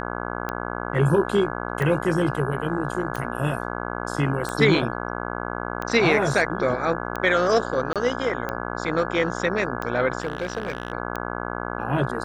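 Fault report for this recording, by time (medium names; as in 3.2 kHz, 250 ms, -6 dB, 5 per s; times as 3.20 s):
buzz 60 Hz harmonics 28 -30 dBFS
tick 45 rpm -15 dBFS
7.93–7.96 s: dropout 27 ms
10.20–10.92 s: clipped -21 dBFS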